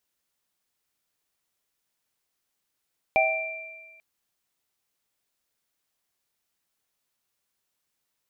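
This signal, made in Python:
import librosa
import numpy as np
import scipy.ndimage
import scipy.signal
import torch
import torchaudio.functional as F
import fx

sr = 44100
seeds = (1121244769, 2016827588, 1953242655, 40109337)

y = fx.additive_free(sr, length_s=0.84, hz=644.0, level_db=-20, upper_db=(0, -0.5), decay_s=1.16, upper_decays_s=(0.59, 1.63), upper_hz=(773.0, 2360.0))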